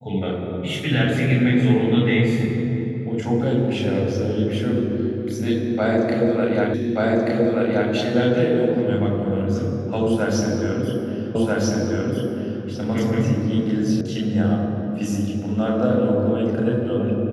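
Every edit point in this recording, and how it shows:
0:06.74: the same again, the last 1.18 s
0:11.35: the same again, the last 1.29 s
0:14.01: cut off before it has died away

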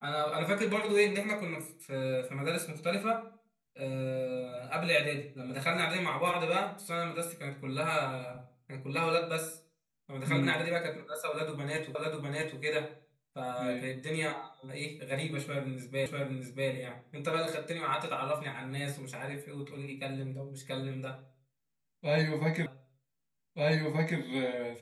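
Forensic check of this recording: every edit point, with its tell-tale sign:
0:11.95: the same again, the last 0.65 s
0:16.06: the same again, the last 0.64 s
0:22.66: the same again, the last 1.53 s

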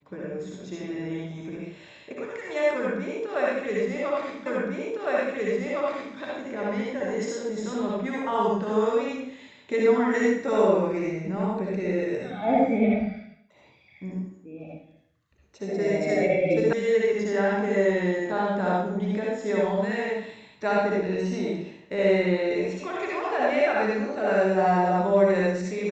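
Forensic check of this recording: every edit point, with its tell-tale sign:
0:04.46: the same again, the last 1.71 s
0:16.73: cut off before it has died away

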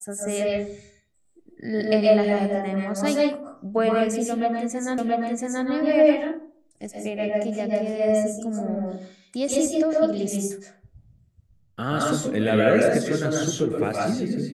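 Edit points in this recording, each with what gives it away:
0:04.98: the same again, the last 0.68 s

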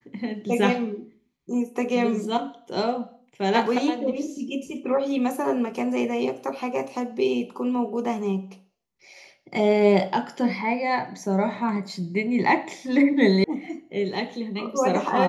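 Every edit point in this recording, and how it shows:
0:13.44: cut off before it has died away

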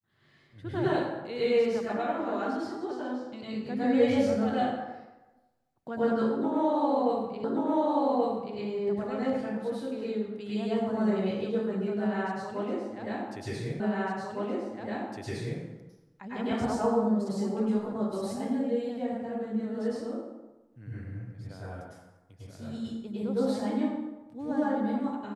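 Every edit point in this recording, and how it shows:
0:07.44: the same again, the last 1.13 s
0:13.80: the same again, the last 1.81 s

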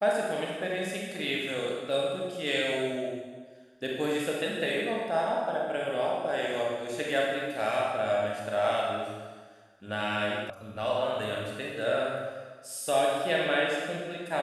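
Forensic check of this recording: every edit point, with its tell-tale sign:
0:10.50: cut off before it has died away

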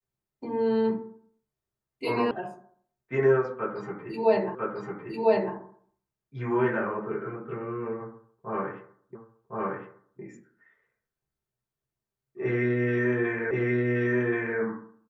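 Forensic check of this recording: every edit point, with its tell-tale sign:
0:02.31: cut off before it has died away
0:04.55: the same again, the last 1 s
0:09.15: the same again, the last 1.06 s
0:13.51: the same again, the last 1.08 s

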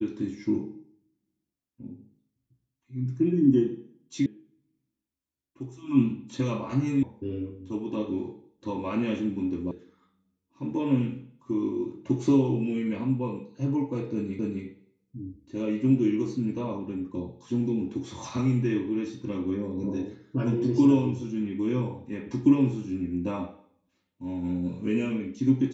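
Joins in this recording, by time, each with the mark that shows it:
0:04.26: cut off before it has died away
0:07.03: cut off before it has died away
0:09.71: cut off before it has died away
0:14.39: the same again, the last 0.26 s

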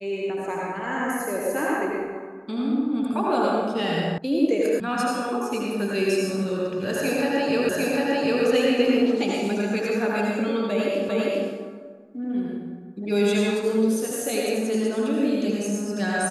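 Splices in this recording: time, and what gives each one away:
0:04.18: cut off before it has died away
0:04.80: cut off before it has died away
0:07.69: the same again, the last 0.75 s
0:11.09: the same again, the last 0.4 s

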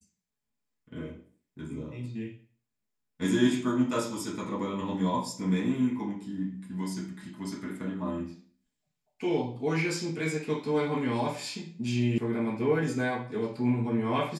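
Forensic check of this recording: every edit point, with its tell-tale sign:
0:12.18: cut off before it has died away

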